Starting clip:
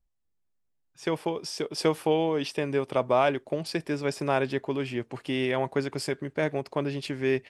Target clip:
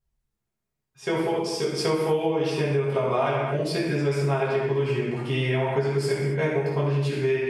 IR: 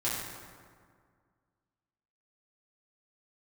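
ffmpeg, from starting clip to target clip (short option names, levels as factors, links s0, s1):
-filter_complex "[1:a]atrim=start_sample=2205,afade=t=out:st=0.41:d=0.01,atrim=end_sample=18522,asetrate=52920,aresample=44100[s0];[0:a][s0]afir=irnorm=-1:irlink=0,acompressor=threshold=0.1:ratio=6"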